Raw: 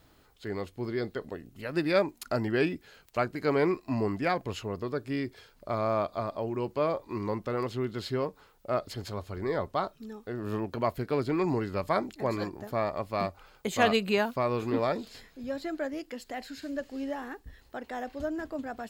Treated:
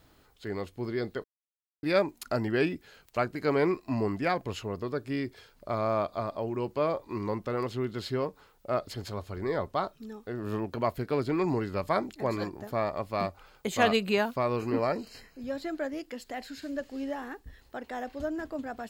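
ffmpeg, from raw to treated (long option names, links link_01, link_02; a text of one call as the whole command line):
ffmpeg -i in.wav -filter_complex "[0:a]asettb=1/sr,asplit=3[link_01][link_02][link_03];[link_01]atrim=end=14.564[link_04];[link_02]atrim=start=14.56:end=15.42,asetpts=PTS-STARTPTS,afade=type=in:duration=0.004:curve=qsin,afade=type=out:start_time=0.856:duration=0.004:curve=qsin,asuperstop=centerf=3500:order=12:qfactor=5.1[link_05];[link_03]atrim=start=15.416[link_06];[link_04][link_05]acrossfade=duration=0.004:curve1=hsin:curve2=qsin[link_07];[link_07][link_06]acrossfade=duration=0.004:curve1=qsin:curve2=hsin,asplit=3[link_08][link_09][link_10];[link_08]atrim=end=1.24,asetpts=PTS-STARTPTS,afade=type=out:start_time=1.236:duration=0.004:curve=hsin[link_11];[link_09]atrim=start=1.24:end=1.83,asetpts=PTS-STARTPTS,volume=0[link_12];[link_10]atrim=start=1.83,asetpts=PTS-STARTPTS,afade=type=in:duration=0.004:curve=hsin[link_13];[link_11][link_12][link_13]concat=n=3:v=0:a=1" out.wav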